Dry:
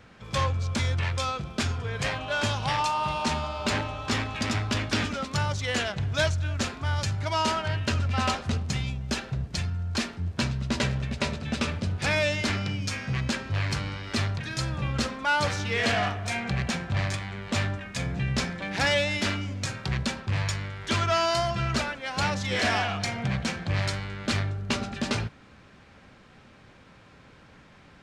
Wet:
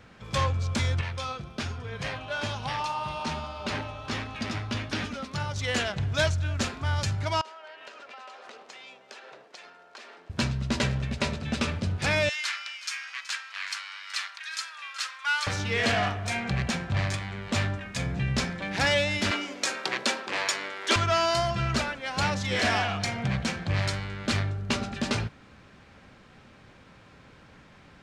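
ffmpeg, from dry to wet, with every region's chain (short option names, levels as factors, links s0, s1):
-filter_complex "[0:a]asettb=1/sr,asplit=3[s0][s1][s2];[s0]atrim=end=1.014[s3];[s1]atrim=start=1.01:end=5.56,asetpts=PTS-STARTPTS,afade=t=in:d=0.004:c=qsin,afade=t=out:st=4.546:d=0.004:c=qsin,acrossover=split=6200[s4][s5];[s5]acompressor=threshold=0.00631:ratio=4:attack=1:release=60[s6];[s4][s6]amix=inputs=2:normalize=0,flanger=delay=3.9:depth=4.7:regen=69:speed=1.2:shape=sinusoidal,bandreject=f=7500:w=10[s7];[s2]atrim=start=5.556[s8];[s3][s7]acrossfade=d=0.004:c1=hsin:c2=qsin[s9];[s9][s8]acrossfade=d=0.004:c1=qsin:c2=hsin,asettb=1/sr,asplit=3[s10][s11][s12];[s10]atrim=end=7.414[s13];[s11]atrim=start=7.41:end=10.3,asetpts=PTS-STARTPTS,afade=t=in:d=0.004:c=qsin,afade=t=out:st=2.886:d=0.004:c=qsin,highpass=f=430:w=0.5412,highpass=f=430:w=1.3066,aemphasis=mode=reproduction:type=50kf,acompressor=threshold=0.00891:ratio=16:attack=3.2:release=140:knee=1:detection=peak[s14];[s12]atrim=start=10.296[s15];[s13][s14]acrossfade=d=0.004:c1=hsin:c2=qsin[s16];[s16][s15]acrossfade=d=0.004:c1=qsin:c2=hsin,asettb=1/sr,asplit=3[s17][s18][s19];[s17]atrim=end=12.294[s20];[s18]atrim=start=12.29:end=15.47,asetpts=PTS-STARTPTS,afade=t=in:d=0.004:c=qsin,afade=t=out:st=3.176:d=0.004:c=qsin,highpass=f=1200:w=0.5412,highpass=f=1200:w=1.3066,aecho=1:1:375:0.168,atrim=end_sample=140238[s21];[s19]atrim=start=15.466[s22];[s20][s21]acrossfade=d=0.004:c1=hsin:c2=qsin[s23];[s23][s22]acrossfade=d=0.004:c1=qsin:c2=hsin,asettb=1/sr,asplit=3[s24][s25][s26];[s24]atrim=end=19.314[s27];[s25]atrim=start=19.31:end=20.96,asetpts=PTS-STARTPTS,afade=t=in:d=0.004:c=qsin,afade=t=out:st=1.646:d=0.004:c=qsin,highpass=f=310:w=0.5412,highpass=f=310:w=1.3066,acontrast=38[s28];[s26]atrim=start=20.956[s29];[s27][s28]acrossfade=d=0.004:c1=hsin:c2=qsin[s30];[s30][s29]acrossfade=d=0.004:c1=qsin:c2=hsin"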